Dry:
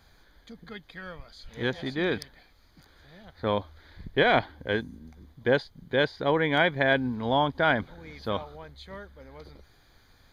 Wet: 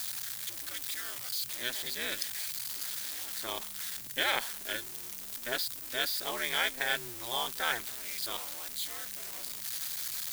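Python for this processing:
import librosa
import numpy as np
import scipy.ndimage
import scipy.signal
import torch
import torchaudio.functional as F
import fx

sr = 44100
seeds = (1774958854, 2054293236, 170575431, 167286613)

p1 = x + 0.5 * 10.0 ** (-33.0 / 20.0) * np.sign(x)
p2 = p1 * np.sin(2.0 * np.pi * 120.0 * np.arange(len(p1)) / sr)
p3 = fx.quant_dither(p2, sr, seeds[0], bits=8, dither='triangular')
p4 = p2 + (p3 * librosa.db_to_amplitude(-4.5))
p5 = F.preemphasis(torch.from_numpy(p4), 0.97).numpy()
y = p5 * librosa.db_to_amplitude(4.5)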